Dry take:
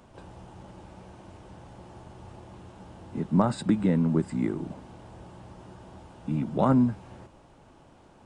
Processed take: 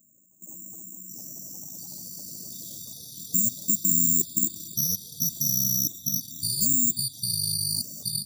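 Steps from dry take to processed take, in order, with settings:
compressor on every frequency bin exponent 0.4
high-shelf EQ 4,100 Hz −6.5 dB
feedback echo with a high-pass in the loop 172 ms, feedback 33%, high-pass 270 Hz, level −3 dB
bad sample-rate conversion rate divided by 6×, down filtered, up zero stuff
noise gate −9 dBFS, range −31 dB
in parallel at −10.5 dB: wave folding −4.5 dBFS
on the sum: automatic gain control gain up to 10 dB
bass and treble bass 0 dB, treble +3 dB
four-comb reverb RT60 1.1 s, combs from 32 ms, DRR 19.5 dB
output level in coarse steps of 20 dB
gate on every frequency bin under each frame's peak −10 dB strong
delay with pitch and tempo change per echo 561 ms, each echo −4 semitones, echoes 3

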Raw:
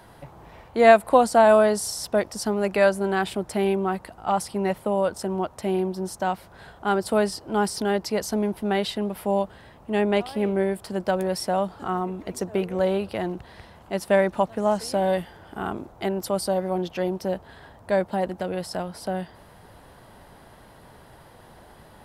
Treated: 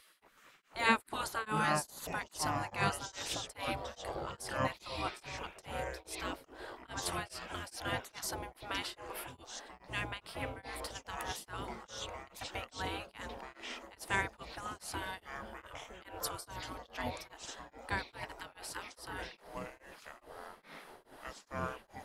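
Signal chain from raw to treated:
delay with pitch and tempo change per echo 377 ms, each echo −7 semitones, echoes 3, each echo −6 dB
gate on every frequency bin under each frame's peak −15 dB weak
tremolo along a rectified sine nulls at 2.4 Hz
level −2.5 dB

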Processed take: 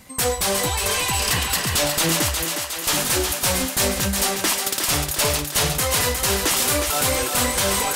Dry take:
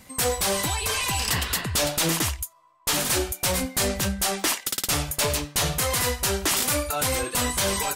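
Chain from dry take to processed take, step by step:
feedback echo with a high-pass in the loop 361 ms, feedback 68%, high-pass 340 Hz, level −5 dB
level +2.5 dB

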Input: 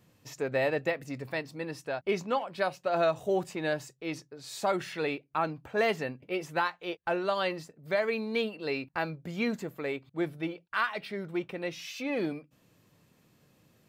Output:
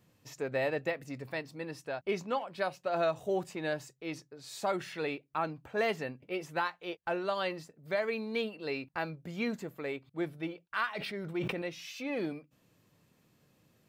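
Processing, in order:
0:10.95–0:11.62: level that may fall only so fast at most 27 dB per second
level −3.5 dB

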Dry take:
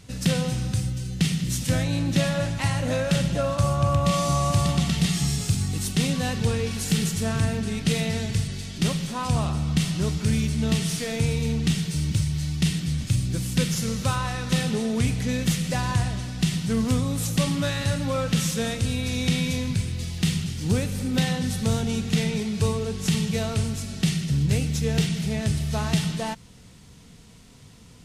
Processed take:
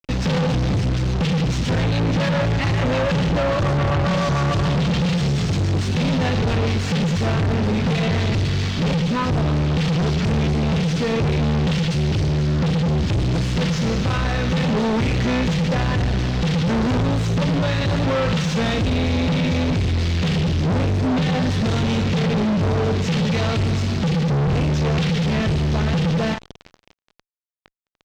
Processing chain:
high-shelf EQ 3,400 Hz +2 dB
ambience of single reflections 12 ms −17 dB, 34 ms −14.5 dB, 51 ms −13.5 dB
rotating-speaker cabinet horn 7 Hz, later 0.6 Hz, at 0:06.48
fuzz pedal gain 47 dB, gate −41 dBFS
high-frequency loss of the air 190 metres
level −4 dB

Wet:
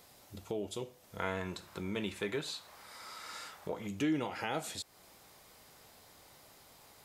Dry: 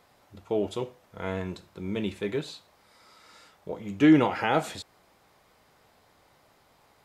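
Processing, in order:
high-shelf EQ 4,300 Hz +11.5 dB
downward compressor 2 to 1, threshold −43 dBFS, peak gain reduction 16 dB
parametric band 1,300 Hz −4.5 dB 1.9 octaves, from 0:01.19 +7 dB, from 0:03.87 −2 dB
level +1 dB

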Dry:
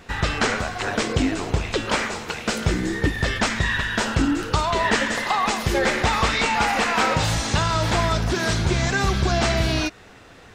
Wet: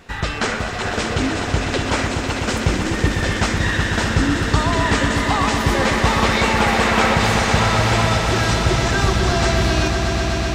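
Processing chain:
echo that builds up and dies away 125 ms, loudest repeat 5, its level −9 dB

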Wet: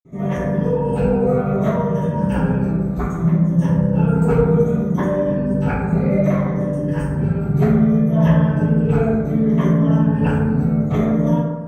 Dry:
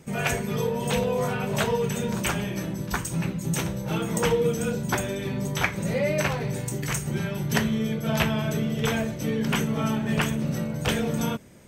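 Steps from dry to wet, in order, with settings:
rippled gain that drifts along the octave scale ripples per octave 1.2, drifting −0.64 Hz, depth 12 dB
tilt shelving filter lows +9.5 dB, about 1,500 Hz
convolution reverb RT60 1.3 s, pre-delay 47 ms, DRR −60 dB
level −7 dB

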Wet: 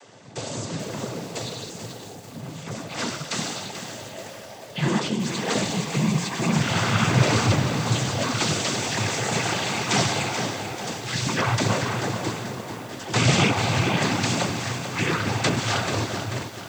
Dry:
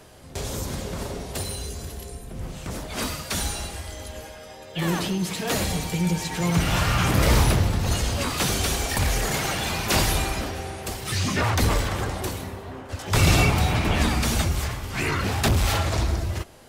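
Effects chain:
cochlear-implant simulation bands 16
feedback echo at a low word length 437 ms, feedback 55%, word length 7 bits, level −8.5 dB
level +1.5 dB

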